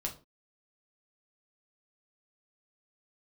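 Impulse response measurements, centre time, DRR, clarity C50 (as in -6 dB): 13 ms, 0.0 dB, 13.0 dB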